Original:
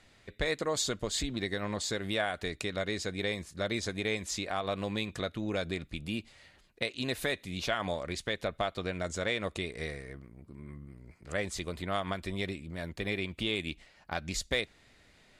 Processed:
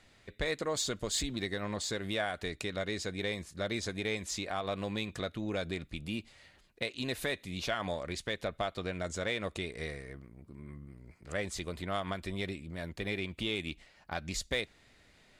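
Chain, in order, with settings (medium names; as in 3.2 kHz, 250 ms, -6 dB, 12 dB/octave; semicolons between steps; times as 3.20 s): 0.96–1.46 s: treble shelf 5.1 kHz +5.5 dB; in parallel at -8 dB: saturation -30 dBFS, distortion -11 dB; on the sum: trim -4 dB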